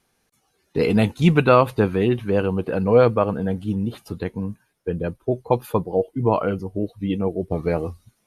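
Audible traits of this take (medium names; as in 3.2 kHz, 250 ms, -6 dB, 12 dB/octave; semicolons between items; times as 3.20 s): noise floor -69 dBFS; spectral tilt -5.5 dB/octave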